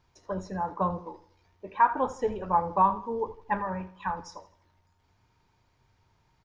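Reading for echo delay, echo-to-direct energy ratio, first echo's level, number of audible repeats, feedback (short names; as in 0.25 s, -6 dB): 81 ms, -15.5 dB, -16.0 dB, 3, 40%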